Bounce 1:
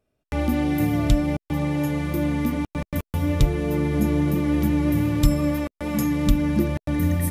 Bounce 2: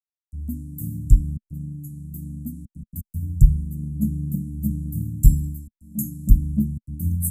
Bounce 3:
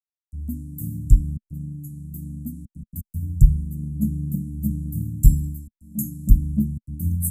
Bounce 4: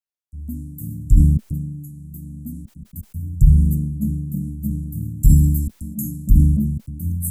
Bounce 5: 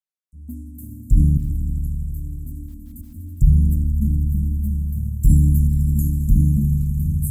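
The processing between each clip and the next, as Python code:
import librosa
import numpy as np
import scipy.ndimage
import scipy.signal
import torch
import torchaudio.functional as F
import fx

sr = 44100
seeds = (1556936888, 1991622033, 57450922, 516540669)

y1 = scipy.signal.sosfilt(scipy.signal.cheby1(4, 1.0, [220.0, 7600.0], 'bandstop', fs=sr, output='sos'), x)
y1 = fx.band_widen(y1, sr, depth_pct=100)
y1 = y1 * librosa.db_to_amplitude(-1.0)
y2 = y1
y3 = fx.sustainer(y2, sr, db_per_s=39.0)
y3 = y3 * librosa.db_to_amplitude(-1.0)
y4 = fx.echo_swell(y3, sr, ms=82, loudest=5, wet_db=-14.5)
y4 = fx.env_flanger(y4, sr, rest_ms=5.4, full_db=-9.0)
y4 = y4 * librosa.db_to_amplitude(-2.0)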